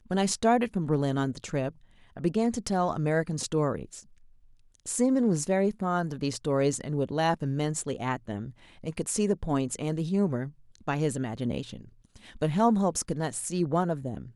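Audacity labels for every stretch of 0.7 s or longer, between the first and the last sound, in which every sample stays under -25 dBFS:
3.760000	4.890000	silence
11.610000	12.420000	silence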